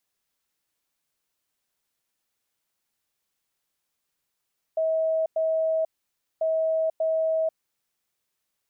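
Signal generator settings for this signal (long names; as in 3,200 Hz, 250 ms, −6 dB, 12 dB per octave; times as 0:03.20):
beeps in groups sine 642 Hz, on 0.49 s, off 0.10 s, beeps 2, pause 0.56 s, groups 2, −21 dBFS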